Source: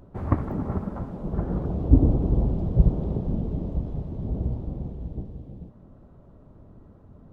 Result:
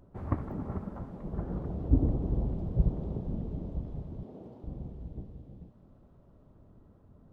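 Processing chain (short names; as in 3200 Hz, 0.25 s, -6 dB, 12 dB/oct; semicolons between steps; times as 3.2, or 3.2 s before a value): 4.23–4.64 HPF 300 Hz 12 dB/oct; thin delay 0.441 s, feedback 76%, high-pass 1700 Hz, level -13 dB; gain -8 dB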